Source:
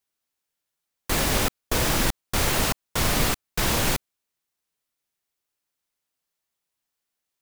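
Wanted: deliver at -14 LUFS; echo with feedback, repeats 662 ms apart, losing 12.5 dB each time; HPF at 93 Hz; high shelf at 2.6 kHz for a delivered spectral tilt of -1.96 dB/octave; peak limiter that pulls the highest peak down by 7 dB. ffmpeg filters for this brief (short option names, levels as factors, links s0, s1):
-af "highpass=93,highshelf=f=2600:g=5,alimiter=limit=0.178:level=0:latency=1,aecho=1:1:662|1324|1986:0.237|0.0569|0.0137,volume=3.55"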